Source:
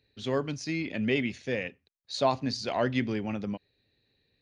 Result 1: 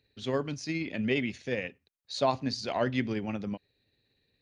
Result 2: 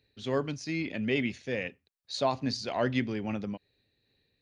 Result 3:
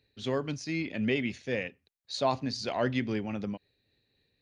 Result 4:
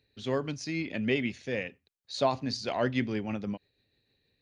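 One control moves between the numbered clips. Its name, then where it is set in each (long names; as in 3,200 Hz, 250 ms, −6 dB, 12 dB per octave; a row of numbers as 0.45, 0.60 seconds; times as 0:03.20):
amplitude tremolo, speed: 17, 2.4, 3.8, 6.3 Hertz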